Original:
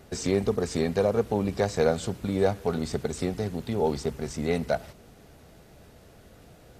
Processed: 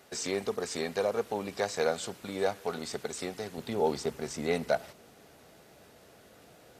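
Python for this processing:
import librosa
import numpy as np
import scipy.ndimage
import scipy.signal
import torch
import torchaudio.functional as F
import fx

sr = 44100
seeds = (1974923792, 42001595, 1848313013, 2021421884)

y = fx.highpass(x, sr, hz=fx.steps((0.0, 800.0), (3.58, 360.0)), slope=6)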